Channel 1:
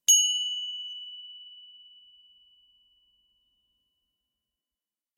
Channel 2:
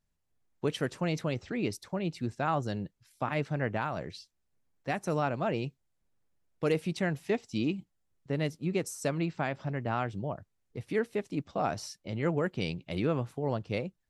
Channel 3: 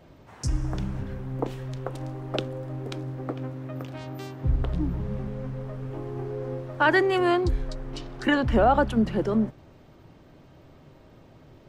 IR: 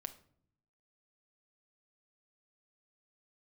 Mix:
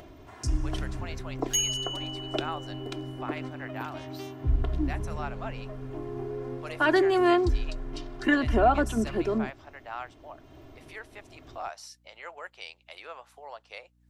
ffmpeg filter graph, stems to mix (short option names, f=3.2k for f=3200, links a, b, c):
-filter_complex "[0:a]aecho=1:1:7.1:0.93,adelay=1450,volume=-11dB[a];[1:a]highpass=f=690:w=0.5412,highpass=f=690:w=1.3066,aeval=exprs='val(0)+0.000562*(sin(2*PI*60*n/s)+sin(2*PI*2*60*n/s)/2+sin(2*PI*3*60*n/s)/3+sin(2*PI*4*60*n/s)/4+sin(2*PI*5*60*n/s)/5)':c=same,volume=-3.5dB[b];[2:a]aecho=1:1:2.9:0.65,volume=-3.5dB[c];[a][b][c]amix=inputs=3:normalize=0,acompressor=mode=upward:threshold=-42dB:ratio=2.5"